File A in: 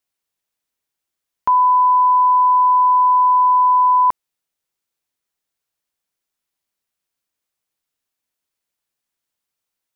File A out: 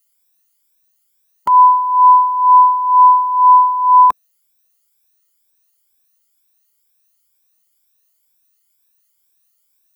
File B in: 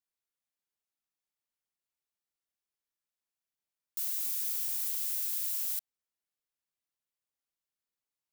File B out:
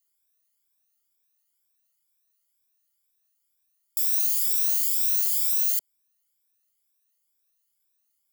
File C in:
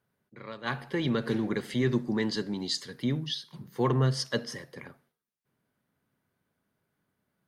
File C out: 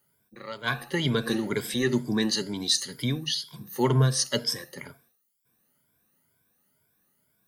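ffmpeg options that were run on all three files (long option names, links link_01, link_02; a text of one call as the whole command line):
ffmpeg -i in.wav -filter_complex "[0:a]afftfilt=real='re*pow(10,13/40*sin(2*PI*(1.7*log(max(b,1)*sr/1024/100)/log(2)-(2.1)*(pts-256)/sr)))':imag='im*pow(10,13/40*sin(2*PI*(1.7*log(max(b,1)*sr/1024/100)/log(2)-(2.1)*(pts-256)/sr)))':win_size=1024:overlap=0.75,acrossover=split=7100[link_01][link_02];[link_02]acompressor=threshold=-40dB:ratio=4:attack=1:release=60[link_03];[link_01][link_03]amix=inputs=2:normalize=0,aemphasis=mode=production:type=75kf" out.wav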